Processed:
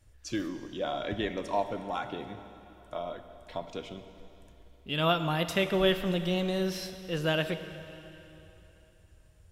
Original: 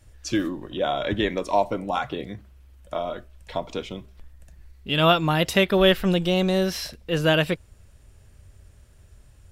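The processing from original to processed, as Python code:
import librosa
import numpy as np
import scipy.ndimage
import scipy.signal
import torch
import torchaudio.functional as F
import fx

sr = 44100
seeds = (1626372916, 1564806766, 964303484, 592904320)

y = fx.rev_plate(x, sr, seeds[0], rt60_s=3.3, hf_ratio=0.95, predelay_ms=0, drr_db=9.0)
y = y * librosa.db_to_amplitude(-8.5)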